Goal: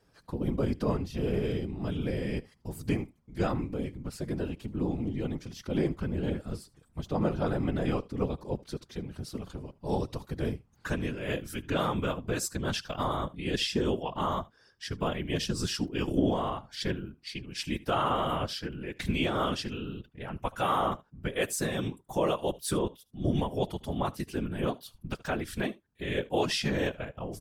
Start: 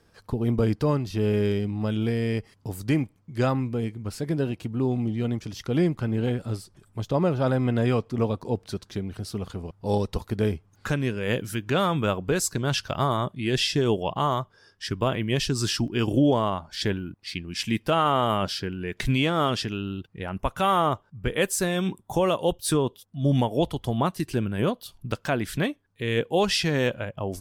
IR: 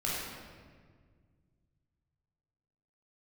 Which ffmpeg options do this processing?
-af "aecho=1:1:75:0.0794,afftfilt=real='hypot(re,im)*cos(2*PI*random(0))':imag='hypot(re,im)*sin(2*PI*random(1))':win_size=512:overlap=0.75"

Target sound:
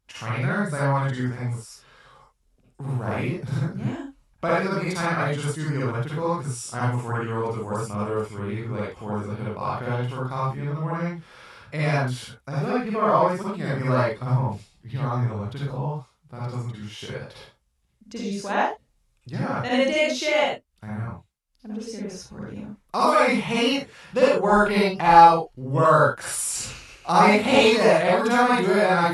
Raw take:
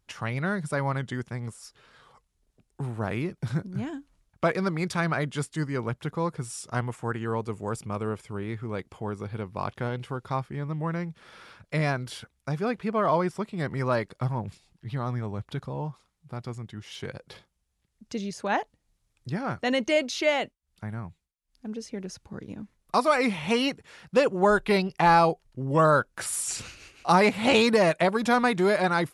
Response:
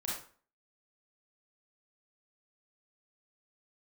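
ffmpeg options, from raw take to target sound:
-filter_complex "[1:a]atrim=start_sample=2205,atrim=end_sample=4410,asetrate=30429,aresample=44100[s0];[0:a][s0]afir=irnorm=-1:irlink=0,volume=0.891"

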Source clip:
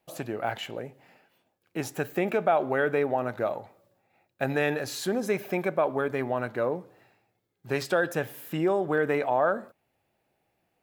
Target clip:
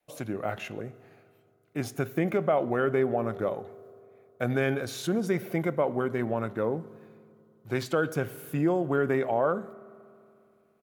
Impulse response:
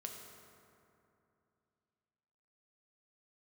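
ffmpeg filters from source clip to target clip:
-filter_complex "[0:a]adynamicequalizer=threshold=0.00708:dfrequency=170:dqfactor=0.74:tfrequency=170:tqfactor=0.74:attack=5:release=100:ratio=0.375:range=3:mode=boostabove:tftype=bell,asetrate=40440,aresample=44100,atempo=1.09051,asplit=2[s0][s1];[s1]asuperstop=centerf=4800:order=4:qfactor=7.6[s2];[1:a]atrim=start_sample=2205[s3];[s2][s3]afir=irnorm=-1:irlink=0,volume=0.237[s4];[s0][s4]amix=inputs=2:normalize=0,volume=0.668"

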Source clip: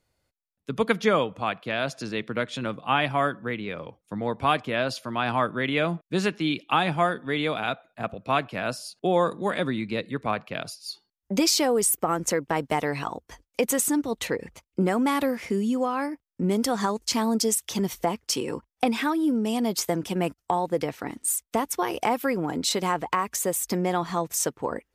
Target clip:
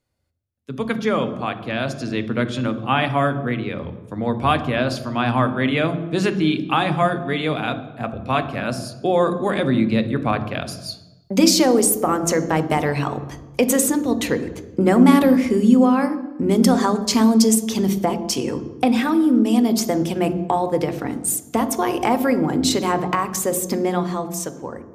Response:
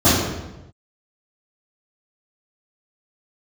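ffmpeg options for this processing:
-filter_complex "[0:a]dynaudnorm=f=120:g=17:m=3.98,asplit=2[s0][s1];[1:a]atrim=start_sample=2205,lowshelf=f=210:g=7.5[s2];[s1][s2]afir=irnorm=-1:irlink=0,volume=0.02[s3];[s0][s3]amix=inputs=2:normalize=0,volume=0.596"

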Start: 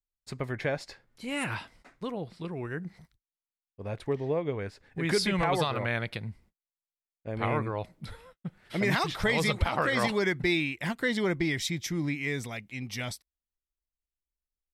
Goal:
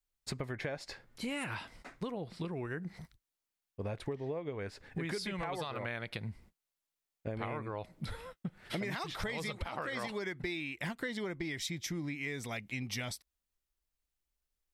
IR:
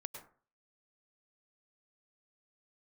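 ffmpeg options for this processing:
-af "adynamicequalizer=threshold=0.01:dfrequency=120:dqfactor=0.74:tfrequency=120:tqfactor=0.74:attack=5:release=100:ratio=0.375:range=2:mode=cutabove:tftype=bell,acompressor=threshold=0.01:ratio=10,volume=1.78"

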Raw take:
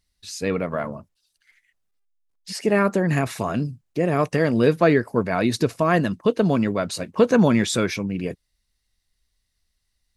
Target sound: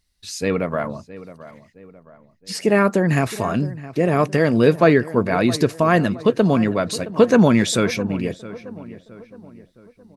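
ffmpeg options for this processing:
-filter_complex "[0:a]asplit=2[s0][s1];[s1]adelay=667,lowpass=f=2100:p=1,volume=0.158,asplit=2[s2][s3];[s3]adelay=667,lowpass=f=2100:p=1,volume=0.46,asplit=2[s4][s5];[s5]adelay=667,lowpass=f=2100:p=1,volume=0.46,asplit=2[s6][s7];[s7]adelay=667,lowpass=f=2100:p=1,volume=0.46[s8];[s0][s2][s4][s6][s8]amix=inputs=5:normalize=0,volume=1.41"

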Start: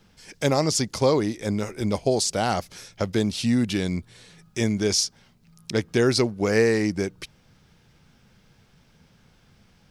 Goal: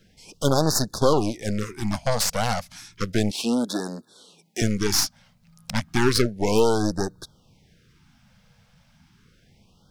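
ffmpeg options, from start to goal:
-filter_complex "[0:a]aeval=exprs='0.501*(cos(1*acos(clip(val(0)/0.501,-1,1)))-cos(1*PI/2))+0.0708*(cos(8*acos(clip(val(0)/0.501,-1,1)))-cos(8*PI/2))':c=same,asettb=1/sr,asplit=3[s0][s1][s2];[s0]atrim=end=3.314[s3];[s1]atrim=start=3.31:end=4.62,asetpts=PTS-STARTPTS,afade=t=in:d=0.004:c=qsin,afade=t=out:st=1.306:d=0.004:c=qsin,highpass=f=220:w=0.5412,highpass=f=220:w=1.3066[s4];[s2]atrim=start=4.616[s5];[s3][s4]acrossfade=d=0.004:c1=hsin:c2=qsin[s6];[s6][s5]acrossfade=d=0.004:c1=qsin:c2=hsin,afftfilt=real='re*(1-between(b*sr/1024,310*pow(2600/310,0.5+0.5*sin(2*PI*0.32*pts/sr))/1.41,310*pow(2600/310,0.5+0.5*sin(2*PI*0.32*pts/sr))*1.41))':imag='im*(1-between(b*sr/1024,310*pow(2600/310,0.5+0.5*sin(2*PI*0.32*pts/sr))/1.41,310*pow(2600/310,0.5+0.5*sin(2*PI*0.32*pts/sr))*1.41))':win_size=1024:overlap=0.75"

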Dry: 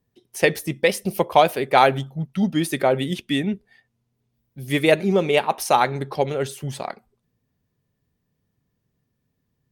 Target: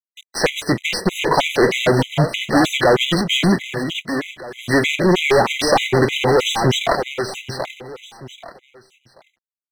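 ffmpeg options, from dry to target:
-filter_complex "[0:a]aeval=exprs='if(lt(val(0),0),0.447*val(0),val(0))':c=same,equalizer=f=4200:w=1.4:g=3,acrossover=split=530|1400[s0][s1][s2];[s0]acompressor=threshold=0.0708:ratio=4[s3];[s1]acompressor=threshold=0.0251:ratio=4[s4];[s2]acompressor=threshold=0.0316:ratio=4[s5];[s3][s4][s5]amix=inputs=3:normalize=0,asplit=2[s6][s7];[s7]highpass=f=720:p=1,volume=44.7,asoftclip=type=tanh:threshold=0.335[s8];[s6][s8]amix=inputs=2:normalize=0,lowpass=f=3900:p=1,volume=0.501,acrossover=split=4700[s9][s10];[s9]acrusher=bits=5:mix=0:aa=0.000001[s11];[s11][s10]amix=inputs=2:normalize=0,asetrate=41625,aresample=44100,atempo=1.05946,adynamicsmooth=sensitivity=2:basefreq=4900,aeval=exprs='sgn(val(0))*max(abs(val(0))-0.0126,0)':c=same,aecho=1:1:784|1568|2352:0.422|0.105|0.0264,afftfilt=real='re*gt(sin(2*PI*3.2*pts/sr)*(1-2*mod(floor(b*sr/1024/2000),2)),0)':imag='im*gt(sin(2*PI*3.2*pts/sr)*(1-2*mod(floor(b*sr/1024/2000),2)),0)':win_size=1024:overlap=0.75,volume=1.88"

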